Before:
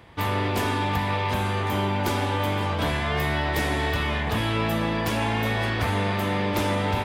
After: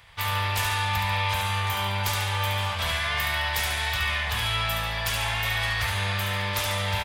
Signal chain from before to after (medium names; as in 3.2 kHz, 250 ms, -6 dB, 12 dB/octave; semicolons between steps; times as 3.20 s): amplifier tone stack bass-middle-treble 10-0-10; on a send: feedback delay 71 ms, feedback 43%, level -5.5 dB; on the sum: trim +5.5 dB